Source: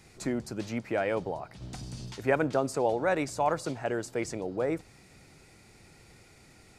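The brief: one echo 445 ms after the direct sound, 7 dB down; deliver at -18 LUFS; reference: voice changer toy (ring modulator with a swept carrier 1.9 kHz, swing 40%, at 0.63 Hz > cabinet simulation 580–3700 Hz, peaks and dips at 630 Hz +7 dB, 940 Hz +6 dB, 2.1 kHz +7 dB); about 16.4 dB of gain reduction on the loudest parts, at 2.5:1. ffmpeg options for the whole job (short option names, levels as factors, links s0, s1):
-af "acompressor=threshold=0.00447:ratio=2.5,aecho=1:1:445:0.447,aeval=exprs='val(0)*sin(2*PI*1900*n/s+1900*0.4/0.63*sin(2*PI*0.63*n/s))':c=same,highpass=580,equalizer=f=630:t=q:w=4:g=7,equalizer=f=940:t=q:w=4:g=6,equalizer=f=2100:t=q:w=4:g=7,lowpass=f=3700:w=0.5412,lowpass=f=3700:w=1.3066,volume=15.8"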